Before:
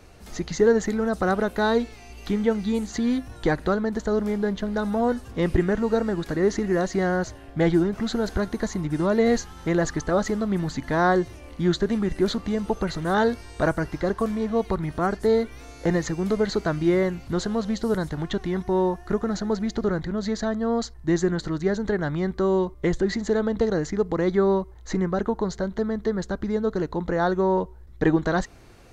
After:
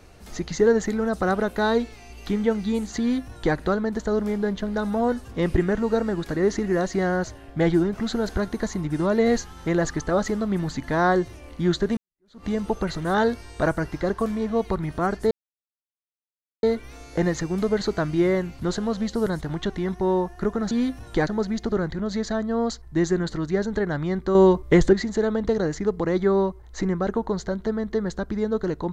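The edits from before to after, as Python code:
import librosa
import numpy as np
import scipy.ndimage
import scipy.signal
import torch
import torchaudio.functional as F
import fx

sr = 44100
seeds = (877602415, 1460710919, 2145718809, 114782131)

y = fx.edit(x, sr, fx.duplicate(start_s=3.0, length_s=0.56, to_s=19.39),
    fx.fade_in_span(start_s=11.97, length_s=0.48, curve='exp'),
    fx.insert_silence(at_s=15.31, length_s=1.32),
    fx.clip_gain(start_s=22.47, length_s=0.58, db=7.0), tone=tone)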